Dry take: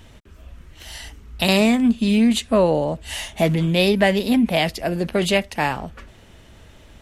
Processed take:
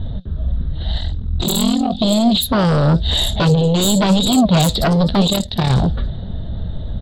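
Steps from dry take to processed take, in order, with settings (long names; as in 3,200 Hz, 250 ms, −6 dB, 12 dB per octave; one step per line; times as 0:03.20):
low-pass that shuts in the quiet parts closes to 1,400 Hz, open at −16.5 dBFS
drawn EQ curve 180 Hz 0 dB, 320 Hz −14 dB, 680 Hz −10 dB, 1,000 Hz −19 dB, 1,700 Hz −18 dB, 2,500 Hz −29 dB, 3,800 Hz +9 dB, 5,500 Hz −20 dB, 9,600 Hz −28 dB
downward compressor 4 to 1, threshold −31 dBFS, peak gain reduction 14 dB
0:05.27–0:05.70: amplitude modulation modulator 37 Hz, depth 70%
sine wavefolder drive 16 dB, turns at −15.5 dBFS
flanger 0.93 Hz, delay 2.8 ms, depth 6.7 ms, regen +78%
0:00.99–0:01.99: ring modulation 21 Hz
multiband delay without the direct sound lows, highs 60 ms, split 5,100 Hz
level +9 dB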